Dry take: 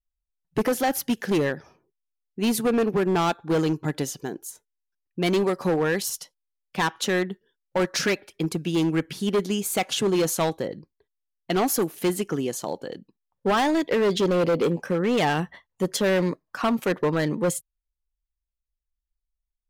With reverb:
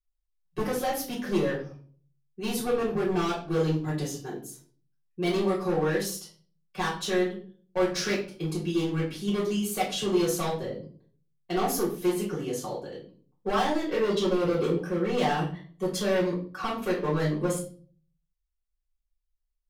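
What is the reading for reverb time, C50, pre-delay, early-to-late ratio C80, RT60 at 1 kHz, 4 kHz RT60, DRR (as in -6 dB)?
0.45 s, 7.5 dB, 3 ms, 12.0 dB, 0.35 s, 0.35 s, -7.0 dB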